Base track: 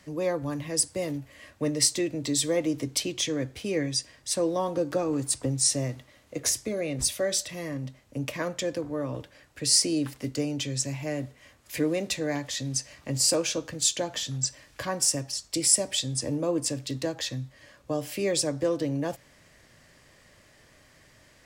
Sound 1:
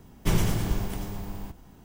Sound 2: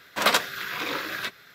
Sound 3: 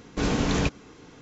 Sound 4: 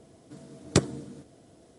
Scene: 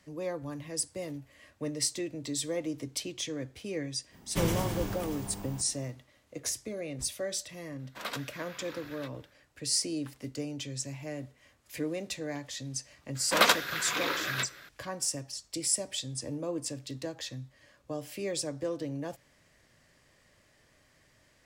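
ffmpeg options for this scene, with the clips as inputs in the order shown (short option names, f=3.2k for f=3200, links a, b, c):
-filter_complex "[2:a]asplit=2[a][b];[0:a]volume=-7.5dB[c];[1:a]highpass=f=110:p=1[d];[b]asplit=2[e][f];[f]adelay=310,highpass=300,lowpass=3.4k,asoftclip=type=hard:threshold=-14dB,volume=-21dB[g];[e][g]amix=inputs=2:normalize=0[h];[d]atrim=end=1.84,asetpts=PTS-STARTPTS,volume=-2.5dB,afade=t=in:d=0.05,afade=t=out:st=1.79:d=0.05,adelay=4100[i];[a]atrim=end=1.54,asetpts=PTS-STARTPTS,volume=-17dB,afade=t=in:d=0.004:c=hsin,afade=t=out:st=1.536:d=0.004:c=hsin,adelay=7790[j];[h]atrim=end=1.54,asetpts=PTS-STARTPTS,volume=-1.5dB,afade=t=in:d=0.004:c=hsin,afade=t=out:st=1.536:d=0.004:c=hsin,adelay=13150[k];[c][i][j][k]amix=inputs=4:normalize=0"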